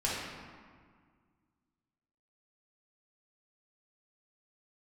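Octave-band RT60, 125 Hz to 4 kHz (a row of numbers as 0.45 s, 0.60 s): 2.3 s, 2.3 s, 1.8 s, 1.8 s, 1.6 s, 1.1 s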